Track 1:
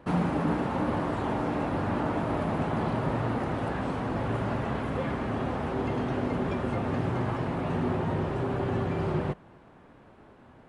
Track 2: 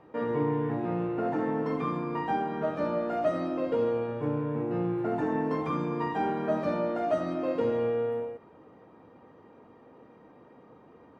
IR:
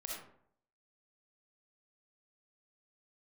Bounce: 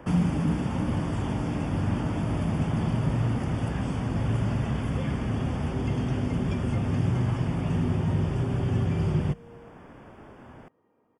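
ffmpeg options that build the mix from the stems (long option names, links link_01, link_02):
-filter_complex "[0:a]acontrast=61,volume=1dB[link_01];[1:a]adelay=1400,volume=-14.5dB[link_02];[link_01][link_02]amix=inputs=2:normalize=0,acrossover=split=210|3000[link_03][link_04][link_05];[link_04]acompressor=threshold=-47dB:ratio=2[link_06];[link_03][link_06][link_05]amix=inputs=3:normalize=0,asuperstop=centerf=4000:order=4:qfactor=3.8"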